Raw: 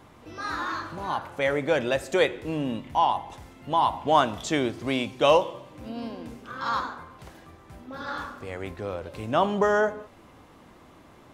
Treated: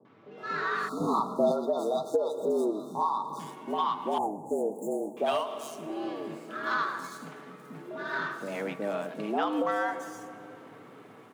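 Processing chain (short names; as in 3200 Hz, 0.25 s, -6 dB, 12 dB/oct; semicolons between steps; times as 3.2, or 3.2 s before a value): median filter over 9 samples; AGC gain up to 8 dB; three bands offset in time lows, mids, highs 50/380 ms, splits 660/5300 Hz; reverb RT60 3.1 s, pre-delay 80 ms, DRR 17 dB; hard clip -7 dBFS, distortion -31 dB; comb 5.7 ms, depth 32%; 2.15–2.7 small resonant body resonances 260/370/760/2200 Hz, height 13 dB -> 10 dB, ringing for 35 ms; frequency shift +100 Hz; 0.89–3.4 spectral delete 1400–3500 Hz; 4.18–5.17 Chebyshev band-stop 880–6900 Hz, order 5; compressor 12:1, threshold -18 dBFS, peak gain reduction 16.5 dB; 1–1.52 low shelf 490 Hz +11.5 dB; gain -6 dB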